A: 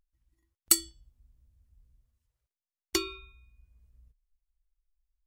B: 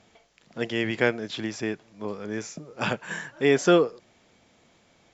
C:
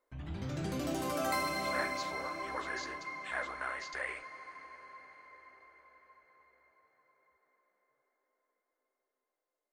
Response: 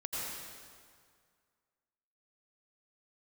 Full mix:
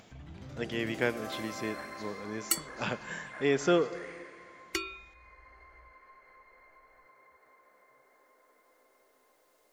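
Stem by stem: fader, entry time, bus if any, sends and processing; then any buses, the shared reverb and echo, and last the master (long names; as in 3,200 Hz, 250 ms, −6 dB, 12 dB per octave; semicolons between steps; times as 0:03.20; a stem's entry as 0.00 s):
−7.0 dB, 1.80 s, no send, gate on every frequency bin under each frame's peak −30 dB strong; flat-topped bell 1,900 Hz +9 dB 1.3 octaves
−7.5 dB, 0.00 s, send −18 dB, no processing
−3.5 dB, 0.00 s, send −11.5 dB, automatic ducking −10 dB, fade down 0.60 s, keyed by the second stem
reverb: on, RT60 2.0 s, pre-delay 78 ms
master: upward compression, threshold −48 dBFS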